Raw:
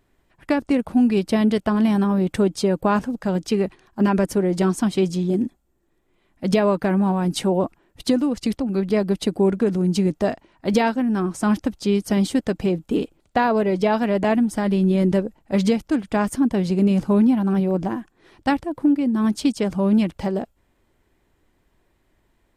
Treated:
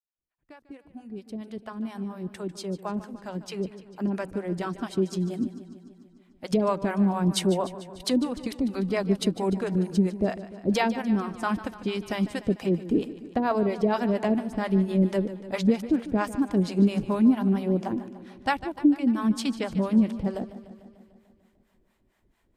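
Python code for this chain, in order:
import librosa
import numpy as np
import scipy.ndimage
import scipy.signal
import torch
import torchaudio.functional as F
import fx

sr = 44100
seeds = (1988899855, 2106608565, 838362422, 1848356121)

y = fx.fade_in_head(x, sr, length_s=7.12)
y = fx.harmonic_tremolo(y, sr, hz=4.4, depth_pct=100, crossover_hz=530.0)
y = fx.echo_warbled(y, sr, ms=148, feedback_pct=65, rate_hz=2.8, cents=64, wet_db=-15)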